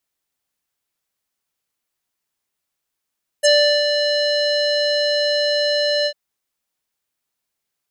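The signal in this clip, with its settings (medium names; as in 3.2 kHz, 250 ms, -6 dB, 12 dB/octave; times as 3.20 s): synth note square D5 12 dB/octave, low-pass 4.4 kHz, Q 6, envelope 1.5 oct, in 0.05 s, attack 20 ms, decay 0.38 s, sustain -6.5 dB, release 0.07 s, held 2.63 s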